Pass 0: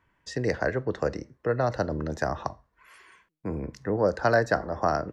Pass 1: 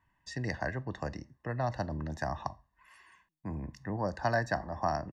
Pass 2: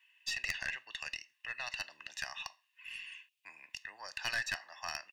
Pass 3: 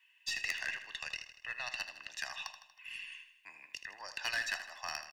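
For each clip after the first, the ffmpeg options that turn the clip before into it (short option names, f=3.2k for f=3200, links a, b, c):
-af "aecho=1:1:1.1:0.69,volume=-7.5dB"
-af "highpass=f=2.7k:t=q:w=7.4,aeval=exprs='(tanh(44.7*val(0)+0.25)-tanh(0.25))/44.7':c=same,volume=6.5dB"
-filter_complex "[0:a]acrossover=split=400[a][b];[a]aeval=exprs='(mod(335*val(0)+1,2)-1)/335':c=same[c];[c][b]amix=inputs=2:normalize=0,aecho=1:1:79|158|237|316|395|474:0.282|0.155|0.0853|0.0469|0.0258|0.0142"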